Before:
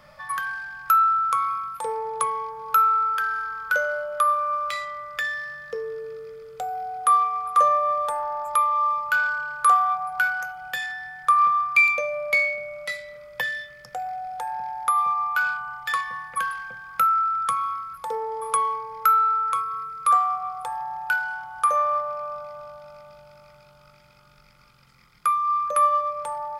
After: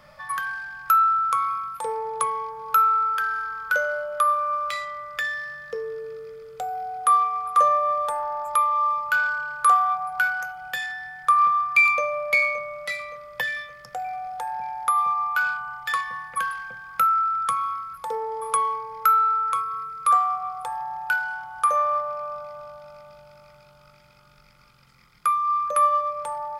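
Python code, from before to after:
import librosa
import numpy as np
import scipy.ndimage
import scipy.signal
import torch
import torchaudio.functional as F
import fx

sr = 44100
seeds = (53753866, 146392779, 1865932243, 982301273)

y = fx.echo_throw(x, sr, start_s=11.13, length_s=0.88, ms=570, feedback_pct=50, wet_db=-13.5)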